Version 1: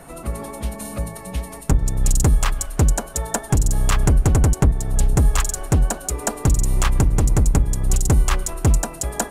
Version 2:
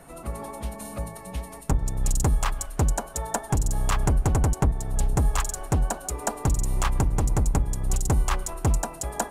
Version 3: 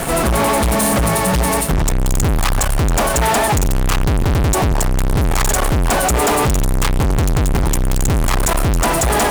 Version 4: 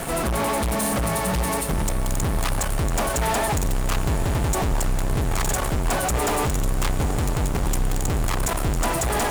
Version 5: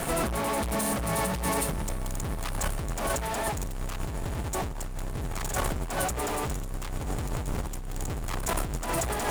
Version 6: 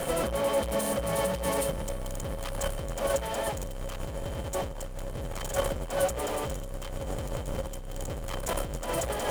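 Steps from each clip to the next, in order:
dynamic equaliser 870 Hz, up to +6 dB, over −41 dBFS, Q 1.4; level −6.5 dB
fuzz pedal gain 47 dB, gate −51 dBFS
feedback delay with all-pass diffusion 971 ms, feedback 67%, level −11 dB; level −8 dB
compressor whose output falls as the input rises −24 dBFS, ratio −0.5; level −5 dB
hollow resonant body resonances 540/3,100 Hz, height 15 dB, ringing for 60 ms; level −3.5 dB

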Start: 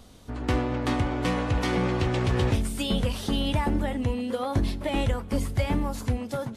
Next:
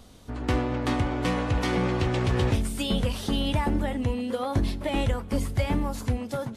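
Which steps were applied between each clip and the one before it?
no processing that can be heard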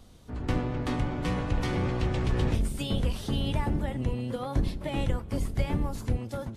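sub-octave generator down 1 octave, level +2 dB
level −5.5 dB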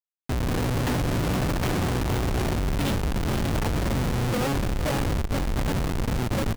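comparator with hysteresis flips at −35 dBFS
single-tap delay 463 ms −11.5 dB
level +4 dB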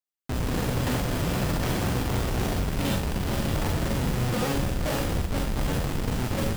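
on a send at −4.5 dB: high-shelf EQ 3,600 Hz +9.5 dB + convolution reverb RT60 0.35 s, pre-delay 32 ms
on the sum: level −3 dB

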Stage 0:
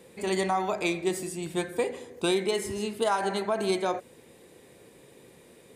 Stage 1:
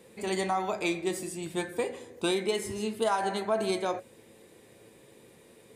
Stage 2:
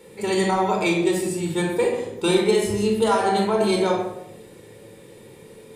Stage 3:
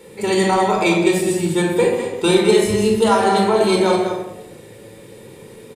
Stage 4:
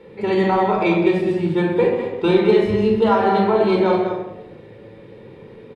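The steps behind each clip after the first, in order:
tuned comb filter 110 Hz, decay 0.17 s, harmonics all, mix 60%; level +2.5 dB
rectangular room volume 2,000 cubic metres, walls furnished, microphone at 4.4 metres; level +4 dB
single-tap delay 203 ms −7.5 dB; level +4.5 dB
high-frequency loss of the air 330 metres

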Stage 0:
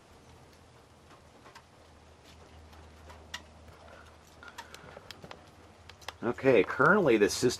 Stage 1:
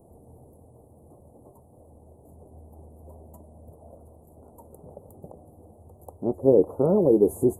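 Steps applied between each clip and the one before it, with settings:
inverse Chebyshev band-stop filter 1,500–5,500 Hz, stop band 50 dB
level +6 dB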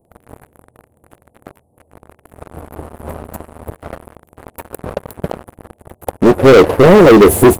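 leveller curve on the samples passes 5
level +5.5 dB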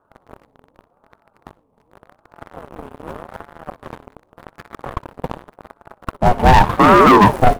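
running median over 25 samples
repeating echo 62 ms, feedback 30%, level −20.5 dB
ring modulator whose carrier an LFO sweeps 560 Hz, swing 40%, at 0.86 Hz
level −1 dB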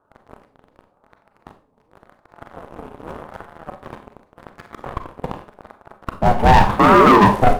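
four-comb reverb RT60 0.36 s, combs from 30 ms, DRR 7.5 dB
linearly interpolated sample-rate reduction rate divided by 2×
level −2 dB

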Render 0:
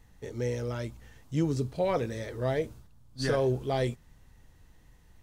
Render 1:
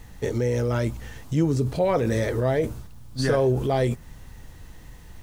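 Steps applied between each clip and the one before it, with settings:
dynamic equaliser 3,900 Hz, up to −5 dB, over −53 dBFS, Q 0.82
in parallel at −2.5 dB: compressor whose output falls as the input rises −36 dBFS, ratio −0.5
on the sum: bit reduction 11 bits
level +5.5 dB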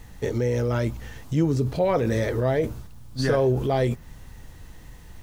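dynamic equaliser 8,700 Hz, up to −5 dB, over −57 dBFS, Q 1.6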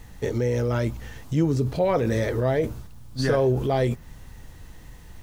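no processing that can be heard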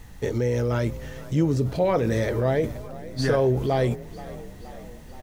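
echo with shifted repeats 475 ms, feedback 62%, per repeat +33 Hz, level −18 dB

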